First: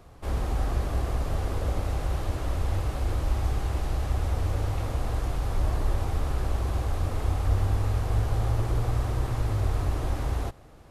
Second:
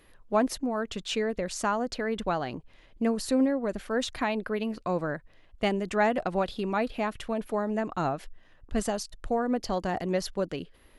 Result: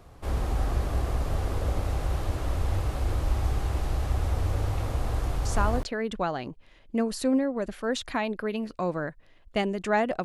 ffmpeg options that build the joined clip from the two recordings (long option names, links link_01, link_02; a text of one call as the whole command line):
ffmpeg -i cue0.wav -i cue1.wav -filter_complex "[0:a]apad=whole_dur=10.24,atrim=end=10.24,atrim=end=5.83,asetpts=PTS-STARTPTS[link_01];[1:a]atrim=start=1.52:end=6.31,asetpts=PTS-STARTPTS[link_02];[link_01][link_02]acrossfade=duration=0.38:curve1=log:curve2=log" out.wav